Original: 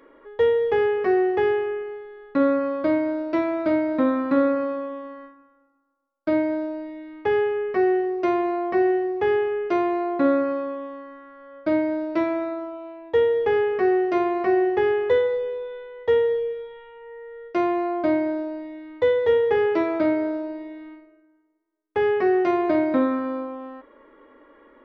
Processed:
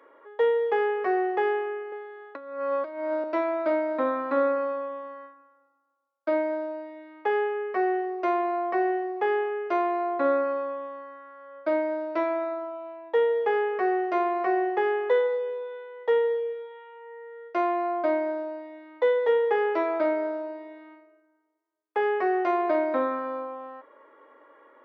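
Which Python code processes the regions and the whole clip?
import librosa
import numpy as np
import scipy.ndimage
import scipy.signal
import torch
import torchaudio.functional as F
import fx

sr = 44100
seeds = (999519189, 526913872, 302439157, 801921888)

y = fx.chain(x, sr, fx.highpass(hz=290.0, slope=12),
    fx.over_compress(threshold_db=-27.0, ratio=-0.5), at=(1.92, 3.24))
y = scipy.signal.sosfilt(scipy.signal.butter(2, 780.0, 'highpass', fs=sr, output='sos'), y)
y = fx.tilt_shelf(y, sr, db=7.5, hz=1400.0)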